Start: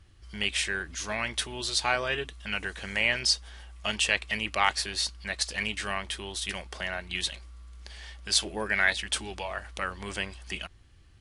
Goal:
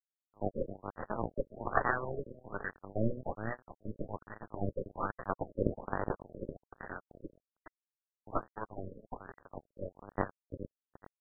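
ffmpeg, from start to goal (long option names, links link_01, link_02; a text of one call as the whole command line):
ffmpeg -i in.wav -filter_complex "[0:a]afftfilt=real='re*pow(10,18/40*sin(2*PI*(0.57*log(max(b,1)*sr/1024/100)/log(2)-(0.42)*(pts-256)/sr)))':imag='im*pow(10,18/40*sin(2*PI*(0.57*log(max(b,1)*sr/1024/100)/log(2)-(0.42)*(pts-256)/sr)))':win_size=1024:overlap=0.75,acrusher=samples=11:mix=1:aa=0.000001:lfo=1:lforange=11:lforate=0.21,adynamicequalizer=threshold=0.0112:dfrequency=560:dqfactor=2.2:tfrequency=560:tqfactor=2.2:attack=5:release=100:ratio=0.375:range=2:mode=boostabove:tftype=bell,aeval=exprs='0.75*(cos(1*acos(clip(val(0)/0.75,-1,1)))-cos(1*PI/2))+0.335*(cos(2*acos(clip(val(0)/0.75,-1,1)))-cos(2*PI/2))+0.00841*(cos(4*acos(clip(val(0)/0.75,-1,1)))-cos(4*PI/2))+0.0266*(cos(6*acos(clip(val(0)/0.75,-1,1)))-cos(6*PI/2))+0.0237*(cos(7*acos(clip(val(0)/0.75,-1,1)))-cos(7*PI/2))':channel_layout=same,highshelf=frequency=2700:gain=4.5,bandreject=frequency=60:width_type=h:width=6,bandreject=frequency=120:width_type=h:width=6,bandreject=frequency=180:width_type=h:width=6,bandreject=frequency=240:width_type=h:width=6,bandreject=frequency=300:width_type=h:width=6,bandreject=frequency=360:width_type=h:width=6,bandreject=frequency=420:width_type=h:width=6,bandreject=frequency=480:width_type=h:width=6,agate=range=-33dB:threshold=-45dB:ratio=3:detection=peak,flanger=delay=5.2:depth=7.7:regen=-61:speed=1.3:shape=triangular,asplit=2[link_01][link_02];[link_02]adelay=415,lowpass=frequency=1300:poles=1,volume=-6dB,asplit=2[link_03][link_04];[link_04]adelay=415,lowpass=frequency=1300:poles=1,volume=0.41,asplit=2[link_05][link_06];[link_06]adelay=415,lowpass=frequency=1300:poles=1,volume=0.41,asplit=2[link_07][link_08];[link_08]adelay=415,lowpass=frequency=1300:poles=1,volume=0.41,asplit=2[link_09][link_10];[link_10]adelay=415,lowpass=frequency=1300:poles=1,volume=0.41[link_11];[link_03][link_05][link_07][link_09][link_11]amix=inputs=5:normalize=0[link_12];[link_01][link_12]amix=inputs=2:normalize=0,aeval=exprs='sgn(val(0))*max(abs(val(0))-0.0237,0)':channel_layout=same,afftfilt=real='re*lt(b*sr/1024,570*pow(2000/570,0.5+0.5*sin(2*PI*1.2*pts/sr)))':imag='im*lt(b*sr/1024,570*pow(2000/570,0.5+0.5*sin(2*PI*1.2*pts/sr)))':win_size=1024:overlap=0.75" out.wav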